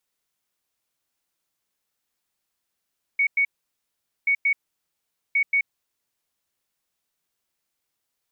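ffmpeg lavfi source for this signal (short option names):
-f lavfi -i "aevalsrc='0.141*sin(2*PI*2230*t)*clip(min(mod(mod(t,1.08),0.18),0.08-mod(mod(t,1.08),0.18))/0.005,0,1)*lt(mod(t,1.08),0.36)':d=3.24:s=44100"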